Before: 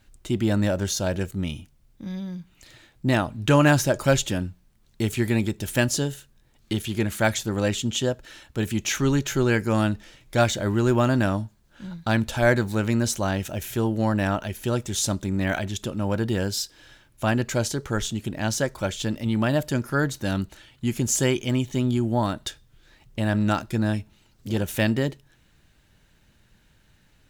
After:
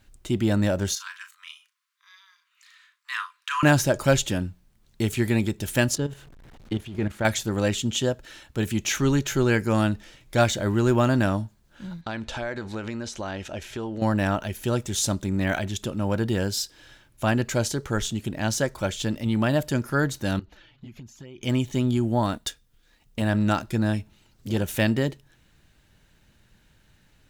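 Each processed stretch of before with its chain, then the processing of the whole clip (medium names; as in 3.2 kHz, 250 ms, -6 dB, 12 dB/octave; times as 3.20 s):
0.95–3.63 s: Chebyshev high-pass 1 kHz, order 8 + treble shelf 4.2 kHz -9 dB + doubling 36 ms -9 dB
5.95–7.25 s: jump at every zero crossing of -34.5 dBFS + low-pass 1.7 kHz 6 dB/octave + level held to a coarse grid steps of 12 dB
12.01–14.02 s: peaking EQ 130 Hz -8.5 dB 1.6 oct + compression, threshold -27 dBFS + low-pass 5.3 kHz
20.39–21.43 s: touch-sensitive flanger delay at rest 8.9 ms, full sweep at -16.5 dBFS + compression 12:1, threshold -38 dBFS + boxcar filter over 5 samples
22.33–23.22 s: companding laws mixed up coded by A + treble shelf 5.4 kHz +4.5 dB + comb 4.2 ms, depth 38%
whole clip: none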